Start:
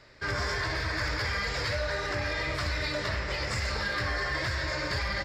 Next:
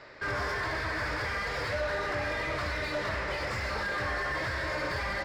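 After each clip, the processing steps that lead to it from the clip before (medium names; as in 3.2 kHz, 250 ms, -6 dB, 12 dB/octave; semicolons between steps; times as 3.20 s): overdrive pedal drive 18 dB, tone 1.1 kHz, clips at -22.5 dBFS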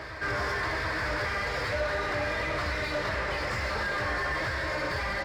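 reverse echo 733 ms -9.5 dB; trim +1.5 dB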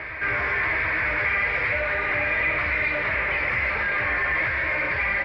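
resonant low-pass 2.3 kHz, resonance Q 6.3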